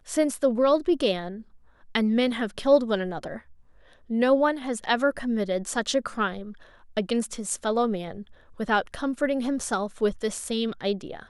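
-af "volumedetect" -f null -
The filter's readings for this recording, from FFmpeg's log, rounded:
mean_volume: -26.2 dB
max_volume: -7.6 dB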